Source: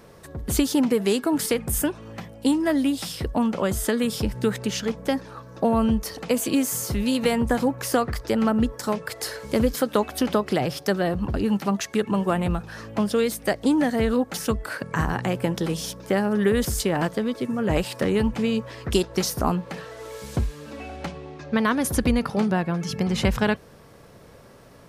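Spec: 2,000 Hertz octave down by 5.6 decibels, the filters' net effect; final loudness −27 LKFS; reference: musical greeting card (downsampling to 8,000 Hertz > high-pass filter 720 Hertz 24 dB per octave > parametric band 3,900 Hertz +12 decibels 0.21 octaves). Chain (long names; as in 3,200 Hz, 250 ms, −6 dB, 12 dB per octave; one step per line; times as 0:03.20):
parametric band 2,000 Hz −7.5 dB
downsampling to 8,000 Hz
high-pass filter 720 Hz 24 dB per octave
parametric band 3,900 Hz +12 dB 0.21 octaves
level +8.5 dB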